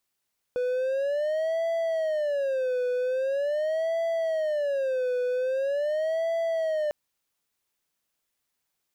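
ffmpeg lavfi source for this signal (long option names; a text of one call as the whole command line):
ffmpeg -f lavfi -i "aevalsrc='0.0794*(1-4*abs(mod((580*t-84/(2*PI*0.43)*sin(2*PI*0.43*t))+0.25,1)-0.5))':duration=6.35:sample_rate=44100" out.wav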